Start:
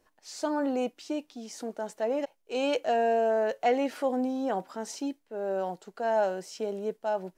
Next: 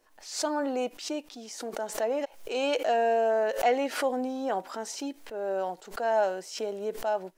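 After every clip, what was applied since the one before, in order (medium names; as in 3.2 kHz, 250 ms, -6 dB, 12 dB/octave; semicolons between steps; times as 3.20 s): peaking EQ 93 Hz -15 dB 2.2 oct; swell ahead of each attack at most 110 dB/s; trim +2 dB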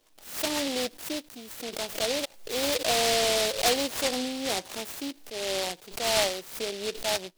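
delay time shaken by noise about 3.5 kHz, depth 0.21 ms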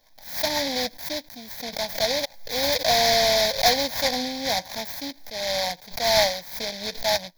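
static phaser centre 1.9 kHz, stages 8; trim +7.5 dB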